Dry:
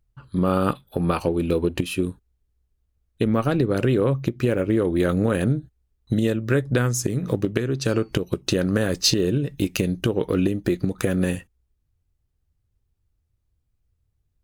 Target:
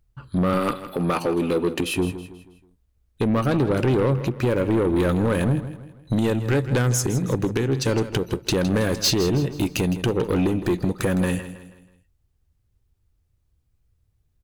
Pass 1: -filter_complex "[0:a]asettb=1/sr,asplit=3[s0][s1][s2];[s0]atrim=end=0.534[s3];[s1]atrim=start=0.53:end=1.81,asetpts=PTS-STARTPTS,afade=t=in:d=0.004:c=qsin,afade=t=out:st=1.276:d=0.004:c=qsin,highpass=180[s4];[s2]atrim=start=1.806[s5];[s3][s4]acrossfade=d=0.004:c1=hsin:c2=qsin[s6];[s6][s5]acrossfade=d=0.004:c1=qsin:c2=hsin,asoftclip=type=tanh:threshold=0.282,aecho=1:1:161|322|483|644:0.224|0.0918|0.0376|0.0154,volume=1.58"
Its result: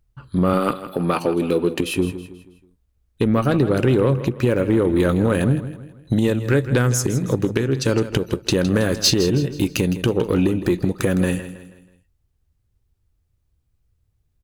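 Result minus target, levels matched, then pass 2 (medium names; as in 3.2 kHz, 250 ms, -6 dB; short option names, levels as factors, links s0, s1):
saturation: distortion -10 dB
-filter_complex "[0:a]asettb=1/sr,asplit=3[s0][s1][s2];[s0]atrim=end=0.534[s3];[s1]atrim=start=0.53:end=1.81,asetpts=PTS-STARTPTS,afade=t=in:d=0.004:c=qsin,afade=t=out:st=1.276:d=0.004:c=qsin,highpass=180[s4];[s2]atrim=start=1.806[s5];[s3][s4]acrossfade=d=0.004:c1=hsin:c2=qsin[s6];[s6][s5]acrossfade=d=0.004:c1=qsin:c2=hsin,asoftclip=type=tanh:threshold=0.106,aecho=1:1:161|322|483|644:0.224|0.0918|0.0376|0.0154,volume=1.58"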